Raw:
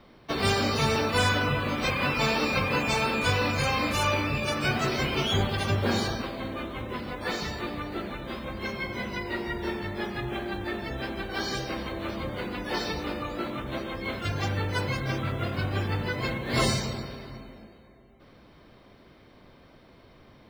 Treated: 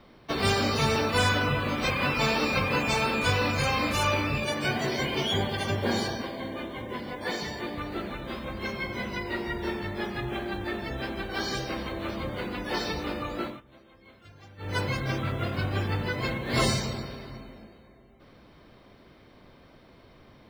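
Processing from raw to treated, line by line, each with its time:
4.44–7.78 notch comb 1300 Hz
13.44–14.75 dip -21.5 dB, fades 0.17 s

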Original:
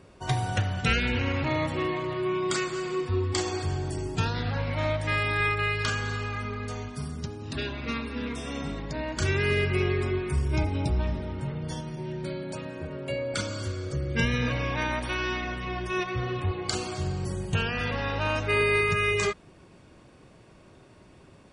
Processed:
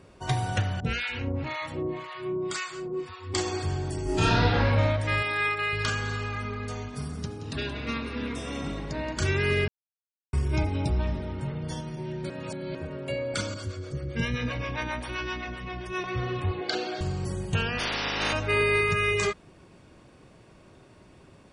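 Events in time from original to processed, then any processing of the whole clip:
0.8–3.34 harmonic tremolo 1.9 Hz, depth 100%, crossover 760 Hz
4.03–4.66 reverb throw, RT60 1.2 s, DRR -7.5 dB
5.22–5.73 HPF 380 Hz 6 dB/oct
6.75–9.13 frequency-shifting echo 0.175 s, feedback 40%, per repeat +42 Hz, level -11.5 dB
9.68–10.33 mute
12.3–12.75 reverse
13.54–16.04 harmonic tremolo 7.6 Hz, crossover 410 Hz
16.61–17.01 speaker cabinet 280–5000 Hz, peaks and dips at 310 Hz +5 dB, 480 Hz +5 dB, 680 Hz +6 dB, 1100 Hz -9 dB, 1600 Hz +8 dB, 3700 Hz +5 dB
17.78–18.32 spectral limiter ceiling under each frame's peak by 26 dB

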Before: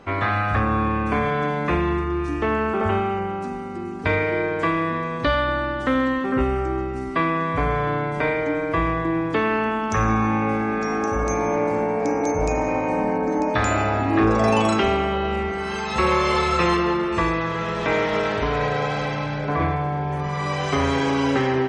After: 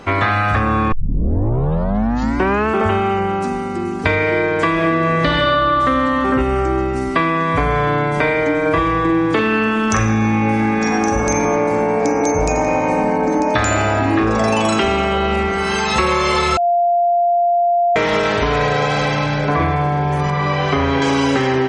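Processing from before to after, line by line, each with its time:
0.92 tape start 1.76 s
4.72–5.73 reverb throw, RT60 2.6 s, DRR -2.5 dB
8.61–11.45 doubler 45 ms -3 dB
12.35–15.69 feedback echo 86 ms, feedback 59%, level -13 dB
16.57–17.96 bleep 696 Hz -18.5 dBFS
20.3–21.02 air absorption 220 m
whole clip: high shelf 3700 Hz +6.5 dB; compressor, threshold -21 dBFS; gain +8.5 dB

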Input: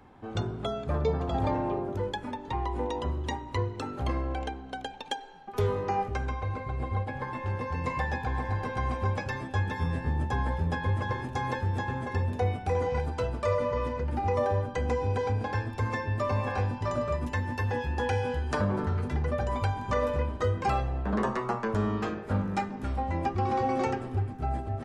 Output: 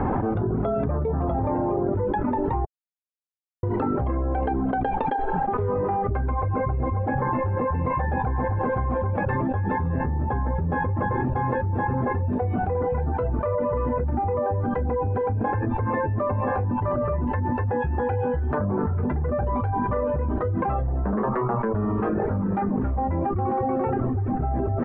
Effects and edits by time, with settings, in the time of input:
2.65–3.63 mute
whole clip: reverb removal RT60 0.52 s; Bessel low-pass 1100 Hz, order 4; fast leveller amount 100%

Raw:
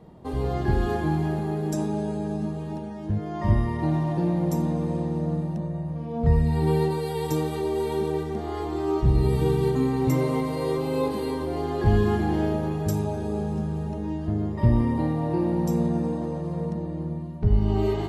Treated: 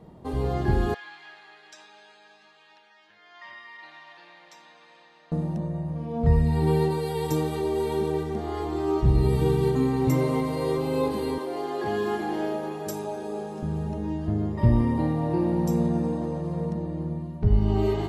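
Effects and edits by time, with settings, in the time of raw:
0.94–5.32 Butterworth band-pass 2700 Hz, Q 0.93
11.38–13.63 HPF 350 Hz

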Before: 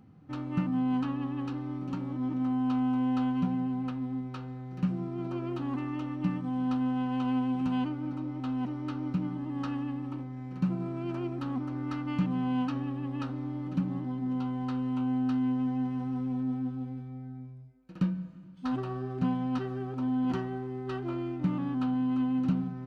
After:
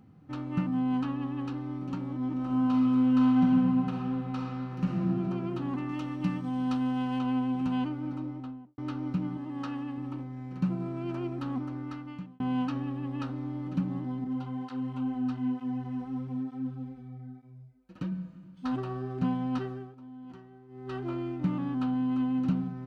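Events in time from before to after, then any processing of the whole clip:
2.32–5 reverb throw, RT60 2.8 s, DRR -2.5 dB
5.89–7.19 high shelf 3000 Hz +8.5 dB
8.16–8.78 studio fade out
9.37–9.98 low shelf 140 Hz -9.5 dB
11.59–12.4 fade out
14.24–18.12 tape flanging out of phase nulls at 1.1 Hz, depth 7.5 ms
19.63–21 dip -17 dB, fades 0.32 s

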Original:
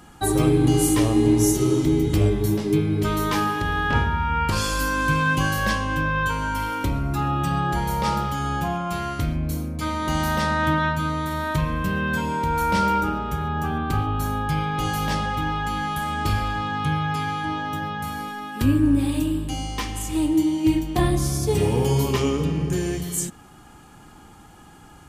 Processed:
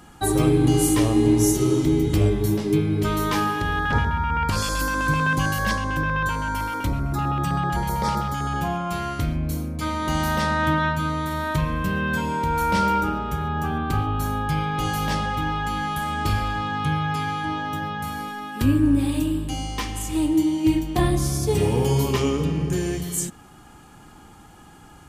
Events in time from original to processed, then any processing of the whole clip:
3.79–8.56 LFO notch square 7.8 Hz 390–2800 Hz

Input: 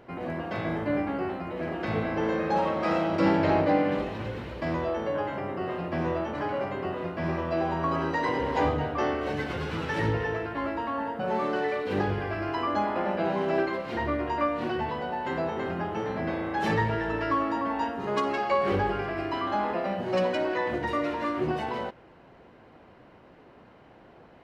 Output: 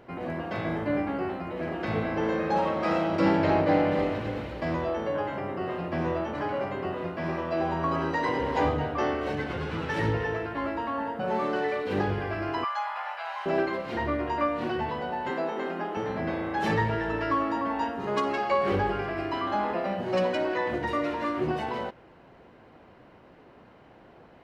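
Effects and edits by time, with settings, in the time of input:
3.39–3.91 echo throw 0.28 s, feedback 45%, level -7 dB
7.16–7.6 HPF 160 Hz 6 dB/oct
9.35–9.9 high shelf 4800 Hz -7.5 dB
12.64–13.46 steep high-pass 820 Hz
15.3–15.97 HPF 210 Hz 24 dB/oct

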